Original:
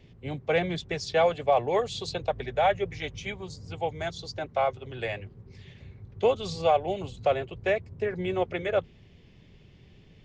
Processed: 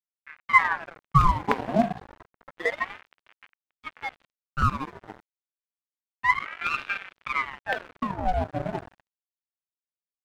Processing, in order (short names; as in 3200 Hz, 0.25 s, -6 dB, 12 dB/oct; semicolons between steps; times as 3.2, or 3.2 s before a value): formant sharpening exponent 2; dynamic EQ 460 Hz, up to +6 dB, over -36 dBFS, Q 0.87; harmonic-percussive split percussive -16 dB; LFO low-pass square 6.6 Hz 620–2000 Hz; bell 590 Hz -14 dB 0.21 oct; low-pass opened by the level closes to 320 Hz, open at -18 dBFS; shoebox room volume 1400 m³, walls mixed, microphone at 0.78 m; crossover distortion -32.5 dBFS; ring modulator with a swept carrier 1100 Hz, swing 80%, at 0.29 Hz; gain +3 dB